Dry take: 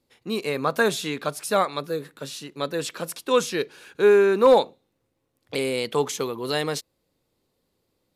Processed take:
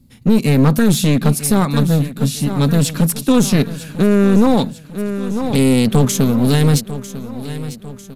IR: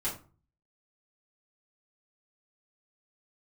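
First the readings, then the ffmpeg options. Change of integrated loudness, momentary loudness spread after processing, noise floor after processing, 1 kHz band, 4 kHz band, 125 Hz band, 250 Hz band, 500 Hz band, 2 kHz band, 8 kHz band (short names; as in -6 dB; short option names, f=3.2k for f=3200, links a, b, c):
+8.0 dB, 14 LU, -38 dBFS, +2.0 dB, +6.0 dB, +24.0 dB, +18.0 dB, +1.0 dB, +1.5 dB, +12.0 dB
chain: -af "firequalizer=gain_entry='entry(230,0);entry(380,-23);entry(11000,-12)':delay=0.05:min_phase=1,aeval=exprs='clip(val(0),-1,0.01)':c=same,aecho=1:1:948|1896|2844|3792:0.188|0.0904|0.0434|0.0208,alimiter=level_in=29.5dB:limit=-1dB:release=50:level=0:latency=1,volume=-2dB"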